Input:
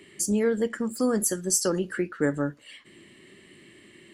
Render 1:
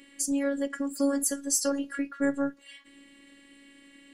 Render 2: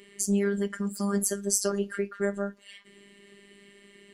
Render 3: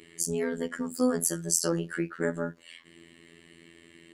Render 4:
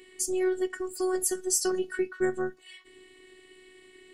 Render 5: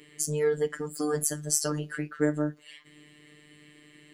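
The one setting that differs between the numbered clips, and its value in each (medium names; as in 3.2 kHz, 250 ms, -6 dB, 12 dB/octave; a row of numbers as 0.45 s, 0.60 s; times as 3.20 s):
robot voice, frequency: 280 Hz, 200 Hz, 84 Hz, 370 Hz, 150 Hz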